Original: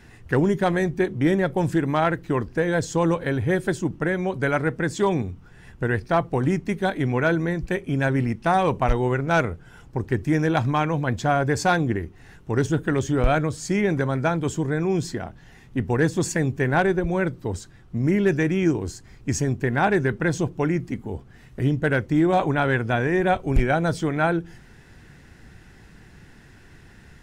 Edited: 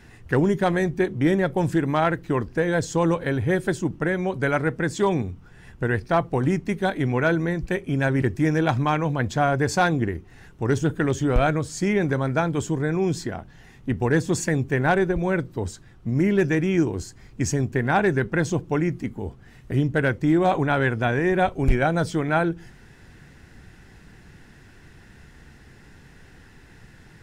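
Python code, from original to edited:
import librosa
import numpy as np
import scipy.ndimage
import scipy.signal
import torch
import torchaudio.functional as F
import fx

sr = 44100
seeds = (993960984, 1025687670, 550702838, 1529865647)

y = fx.edit(x, sr, fx.cut(start_s=8.22, length_s=1.88), tone=tone)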